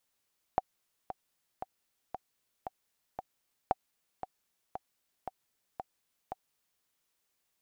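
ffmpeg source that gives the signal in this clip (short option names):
-f lavfi -i "aevalsrc='pow(10,(-13-11.5*gte(mod(t,6*60/115),60/115))/20)*sin(2*PI*757*mod(t,60/115))*exp(-6.91*mod(t,60/115)/0.03)':d=6.26:s=44100"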